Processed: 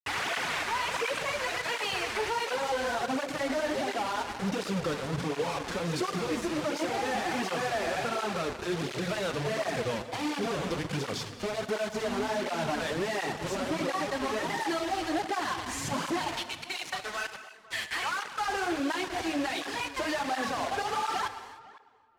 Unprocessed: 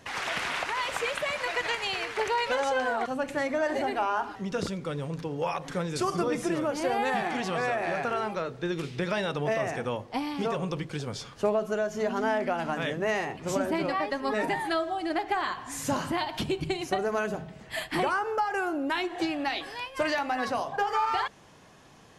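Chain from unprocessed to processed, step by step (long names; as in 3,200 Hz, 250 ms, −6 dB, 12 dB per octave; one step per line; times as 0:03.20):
0:16.39–0:18.48: high-pass filter 1,500 Hz 12 dB per octave
downward compressor 8 to 1, threshold −32 dBFS, peak gain reduction 12 dB
log-companded quantiser 2 bits
high-frequency loss of the air 55 metres
feedback echo with a low-pass in the loop 508 ms, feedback 18%, low-pass 2,100 Hz, level −18.5 dB
reverb whose tail is shaped and stops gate 330 ms flat, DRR 10 dB
through-zero flanger with one copy inverted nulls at 1.4 Hz, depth 7.3 ms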